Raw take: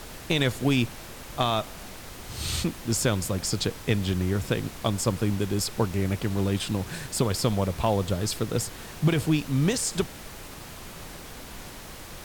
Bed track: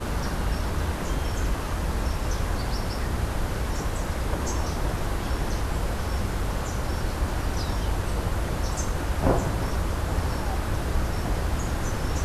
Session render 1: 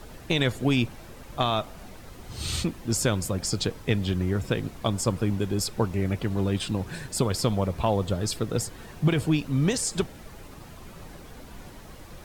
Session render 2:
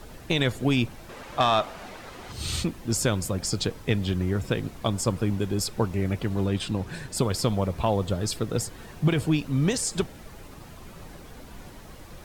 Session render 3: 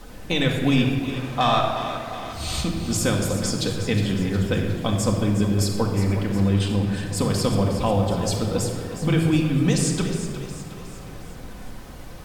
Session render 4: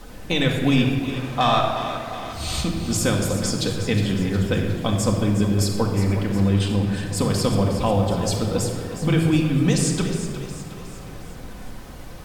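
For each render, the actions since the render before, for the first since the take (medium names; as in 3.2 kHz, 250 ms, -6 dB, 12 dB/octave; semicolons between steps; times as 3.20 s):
noise reduction 9 dB, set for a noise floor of -42 dBFS
1.09–2.32 s: overdrive pedal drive 15 dB, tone 2.8 kHz, clips at -10 dBFS; 6.46–7.17 s: treble shelf 8.9 kHz -5 dB
on a send: two-band feedback delay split 400 Hz, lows 100 ms, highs 362 ms, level -11 dB; on the sum: simulated room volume 2600 m³, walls mixed, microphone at 2 m
trim +1 dB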